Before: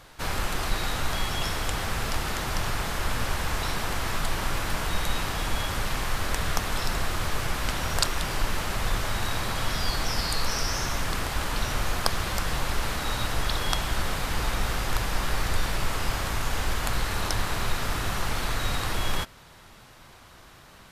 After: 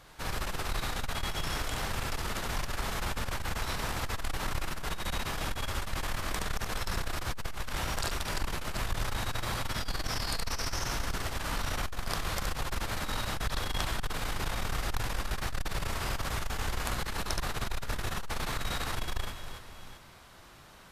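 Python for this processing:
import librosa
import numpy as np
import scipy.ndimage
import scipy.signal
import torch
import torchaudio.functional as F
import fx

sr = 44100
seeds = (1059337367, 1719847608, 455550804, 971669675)

y = fx.echo_multitap(x, sr, ms=(46, 72, 344, 735), db=(-11.0, -3.5, -11.0, -17.0))
y = fx.transformer_sat(y, sr, knee_hz=230.0)
y = F.gain(torch.from_numpy(y), -5.0).numpy()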